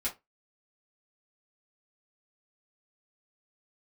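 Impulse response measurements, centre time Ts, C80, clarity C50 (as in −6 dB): 15 ms, 25.5 dB, 14.0 dB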